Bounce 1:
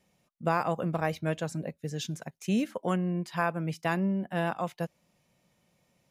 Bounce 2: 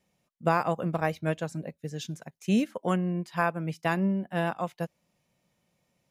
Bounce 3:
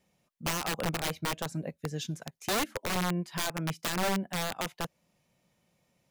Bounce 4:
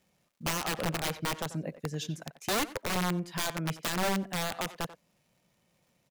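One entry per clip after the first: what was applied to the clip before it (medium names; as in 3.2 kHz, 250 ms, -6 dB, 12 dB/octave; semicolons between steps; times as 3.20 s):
upward expansion 1.5:1, over -38 dBFS; trim +3.5 dB
in parallel at -2.5 dB: compression 16:1, threshold -32 dBFS, peak gain reduction 15 dB; on the sum: integer overflow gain 20.5 dB; trim -3.5 dB
speakerphone echo 90 ms, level -11 dB; crackle 270 per s -61 dBFS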